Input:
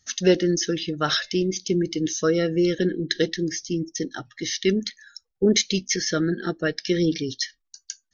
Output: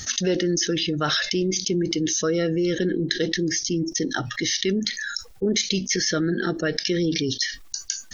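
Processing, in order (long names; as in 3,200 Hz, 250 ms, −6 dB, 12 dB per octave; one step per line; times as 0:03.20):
envelope flattener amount 70%
level −6.5 dB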